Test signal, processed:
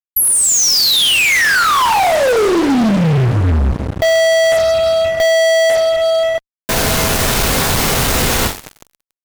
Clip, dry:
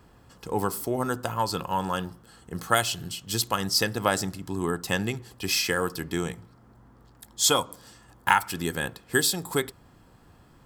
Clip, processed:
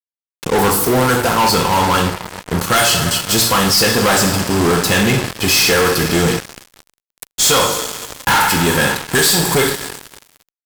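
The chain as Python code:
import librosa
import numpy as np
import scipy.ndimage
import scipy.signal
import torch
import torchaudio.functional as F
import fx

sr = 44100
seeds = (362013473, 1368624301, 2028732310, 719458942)

y = fx.rev_double_slope(x, sr, seeds[0], early_s=0.46, late_s=5.0, knee_db=-19, drr_db=2.0)
y = fx.fuzz(y, sr, gain_db=34.0, gate_db=-37.0)
y = y * 10.0 ** (2.5 / 20.0)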